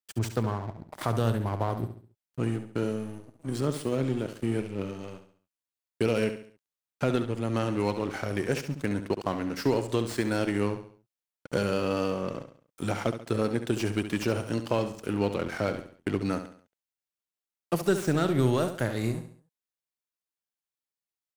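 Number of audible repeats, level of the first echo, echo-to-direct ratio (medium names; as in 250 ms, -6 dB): 4, -10.0 dB, -9.5 dB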